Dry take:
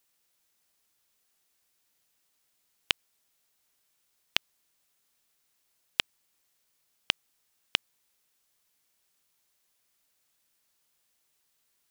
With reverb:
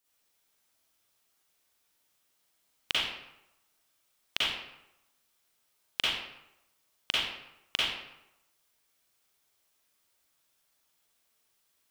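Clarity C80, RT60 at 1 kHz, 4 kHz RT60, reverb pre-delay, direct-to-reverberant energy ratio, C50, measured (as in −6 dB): 1.5 dB, 0.90 s, 0.60 s, 38 ms, −8.5 dB, −4.0 dB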